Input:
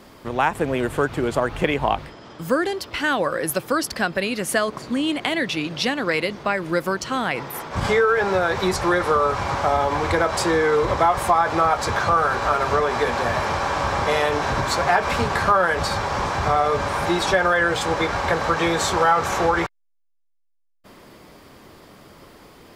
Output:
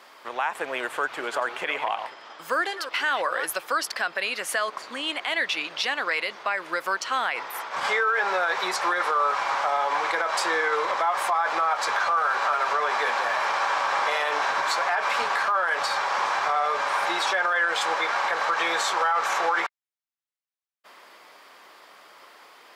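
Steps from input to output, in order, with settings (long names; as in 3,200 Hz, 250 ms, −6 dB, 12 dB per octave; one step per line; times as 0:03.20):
0:01.01–0:03.46: delay that plays each chunk backwards 188 ms, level −12 dB
high-pass filter 910 Hz 12 dB per octave
high-shelf EQ 5,000 Hz −9 dB
brickwall limiter −18 dBFS, peak gain reduction 9.5 dB
level +3 dB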